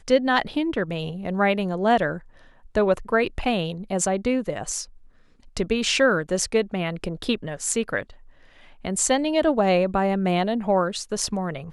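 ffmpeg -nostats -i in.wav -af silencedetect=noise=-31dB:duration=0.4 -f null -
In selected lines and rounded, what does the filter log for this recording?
silence_start: 2.18
silence_end: 2.75 | silence_duration: 0.58
silence_start: 4.84
silence_end: 5.57 | silence_duration: 0.73
silence_start: 8.03
silence_end: 8.85 | silence_duration: 0.82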